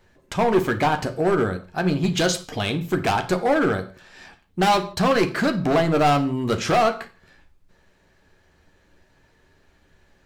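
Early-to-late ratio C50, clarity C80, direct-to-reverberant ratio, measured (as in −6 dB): 13.5 dB, 18.5 dB, 6.0 dB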